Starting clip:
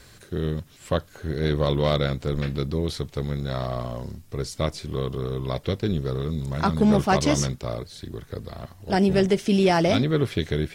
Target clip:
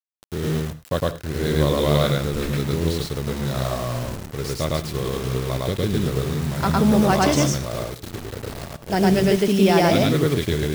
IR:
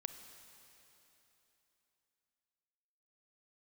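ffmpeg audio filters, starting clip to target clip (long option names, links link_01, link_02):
-filter_complex "[0:a]acrusher=bits=5:mix=0:aa=0.000001,asplit=2[link_01][link_02];[1:a]atrim=start_sample=2205,afade=type=out:start_time=0.16:duration=0.01,atrim=end_sample=7497,adelay=108[link_03];[link_02][link_03]afir=irnorm=-1:irlink=0,volume=3.5dB[link_04];[link_01][link_04]amix=inputs=2:normalize=0"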